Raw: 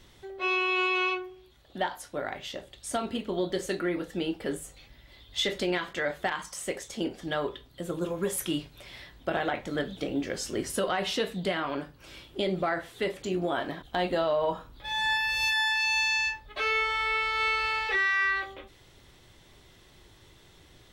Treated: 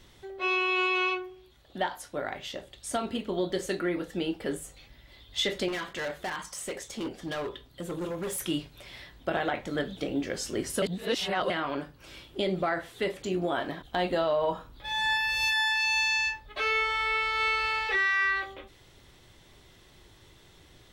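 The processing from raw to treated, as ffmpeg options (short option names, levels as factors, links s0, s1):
-filter_complex "[0:a]asettb=1/sr,asplit=3[s0][s1][s2];[s0]atrim=end=5.684[s3];[s1]atrim=start=5.68:end=8.41,asetpts=PTS-STARTPTS,afade=t=in:d=0.004:c=qsin,afade=t=out:st=2.726:d=0.004:c=qsin,volume=31.6,asoftclip=hard,volume=0.0316[s4];[s2]atrim=start=8.406[s5];[s3][s4]acrossfade=d=0.004:c1=hsin:c2=qsin[s6];[s6][s5]acrossfade=d=0.004:c1=qsin:c2=hsin,asplit=3[s7][s8][s9];[s7]atrim=end=10.822[s10];[s8]atrim=start=10.818:end=11.502,asetpts=PTS-STARTPTS,areverse[s11];[s9]atrim=start=11.498[s12];[s10][s11]acrossfade=d=0.004:c1=hsin:c2=hsin[s13];[s13][s12]acrossfade=d=0.004:c1=hsin:c2=hsin"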